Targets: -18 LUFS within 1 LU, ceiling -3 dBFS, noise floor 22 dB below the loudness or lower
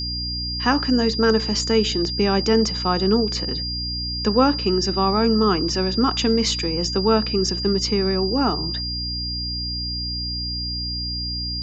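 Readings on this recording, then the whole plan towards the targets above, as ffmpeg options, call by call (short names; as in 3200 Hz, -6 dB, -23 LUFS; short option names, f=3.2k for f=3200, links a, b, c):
hum 60 Hz; harmonics up to 300 Hz; hum level -28 dBFS; steady tone 4800 Hz; tone level -26 dBFS; loudness -21.0 LUFS; peak -3.5 dBFS; loudness target -18.0 LUFS
-> -af "bandreject=f=60:t=h:w=6,bandreject=f=120:t=h:w=6,bandreject=f=180:t=h:w=6,bandreject=f=240:t=h:w=6,bandreject=f=300:t=h:w=6"
-af "bandreject=f=4.8k:w=30"
-af "volume=3dB,alimiter=limit=-3dB:level=0:latency=1"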